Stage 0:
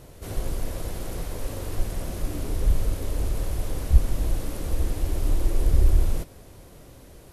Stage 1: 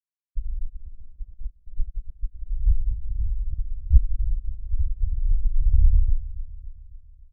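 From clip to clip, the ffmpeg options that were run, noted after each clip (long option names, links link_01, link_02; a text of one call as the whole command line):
ffmpeg -i in.wav -af "afftfilt=real='re*gte(hypot(re,im),0.501)':imag='im*gte(hypot(re,im),0.501)':win_size=1024:overlap=0.75,aecho=1:1:276|552|828|1104|1380:0.168|0.0907|0.049|0.0264|0.0143,volume=1.5dB" out.wav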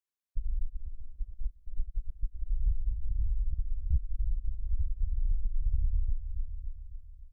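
ffmpeg -i in.wav -af "equalizer=frequency=140:width=1.5:gain=-6.5,acompressor=threshold=-24dB:ratio=6" out.wav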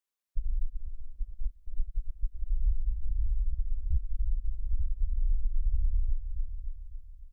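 ffmpeg -i in.wav -af "equalizer=frequency=120:width=1:gain=-10,volume=2.5dB" out.wav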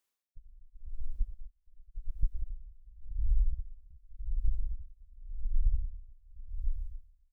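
ffmpeg -i in.wav -af "acompressor=threshold=-27dB:ratio=6,aeval=exprs='val(0)*pow(10,-29*(0.5-0.5*cos(2*PI*0.89*n/s))/20)':channel_layout=same,volume=7dB" out.wav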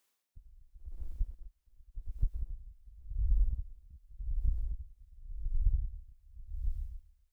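ffmpeg -i in.wav -af "highpass=frequency=79:poles=1,volume=6.5dB" out.wav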